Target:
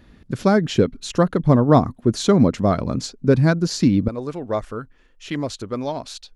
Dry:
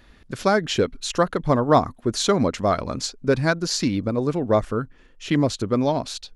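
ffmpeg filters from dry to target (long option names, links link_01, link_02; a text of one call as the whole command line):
ffmpeg -i in.wav -af "asetnsamples=nb_out_samples=441:pad=0,asendcmd='4.08 equalizer g -4',equalizer=frequency=160:width=0.44:gain=11.5,volume=-3dB" out.wav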